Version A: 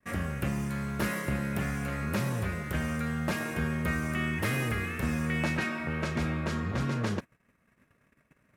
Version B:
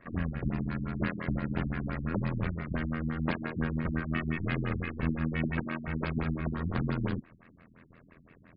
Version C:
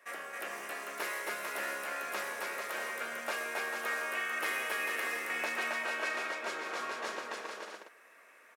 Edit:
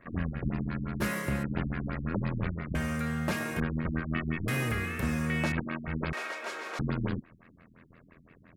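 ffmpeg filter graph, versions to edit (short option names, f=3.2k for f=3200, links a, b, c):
-filter_complex "[0:a]asplit=3[a][b][c];[1:a]asplit=5[d][e][f][g][h];[d]atrim=end=1.02[i];[a]atrim=start=1:end=1.44[j];[e]atrim=start=1.42:end=2.752[k];[b]atrim=start=2.748:end=3.602[l];[f]atrim=start=3.598:end=4.482[m];[c]atrim=start=4.478:end=5.522[n];[g]atrim=start=5.518:end=6.132[o];[2:a]atrim=start=6.128:end=6.792[p];[h]atrim=start=6.788[q];[i][j]acrossfade=d=0.02:c1=tri:c2=tri[r];[r][k]acrossfade=d=0.02:c1=tri:c2=tri[s];[s][l]acrossfade=d=0.004:c1=hsin:c2=hsin[t];[t][m]acrossfade=d=0.004:c1=hsin:c2=hsin[u];[u][n]acrossfade=d=0.004:c1=hsin:c2=hsin[v];[v][o]acrossfade=d=0.004:c1=hsin:c2=hsin[w];[w][p]acrossfade=d=0.004:c1=hsin:c2=hsin[x];[x][q]acrossfade=d=0.004:c1=hsin:c2=hsin"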